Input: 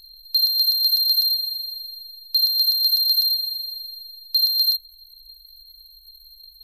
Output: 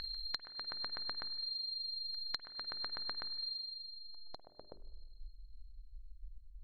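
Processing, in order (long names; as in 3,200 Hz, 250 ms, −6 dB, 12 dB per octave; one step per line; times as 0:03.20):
treble cut that deepens with the level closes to 1,200 Hz, closed at −17 dBFS
tilt shelving filter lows −4 dB, about 760 Hz
mains-hum notches 50/100/150/200/250/300/350/400 Hz
downward compressor, threshold −41 dBFS, peak gain reduction 22 dB
echo ahead of the sound 200 ms −23 dB
low-pass filter sweep 1,700 Hz → 100 Hz, 0:03.47–0:06.43
spring reverb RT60 1.1 s, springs 50 ms, chirp 75 ms, DRR 16 dB
level +15.5 dB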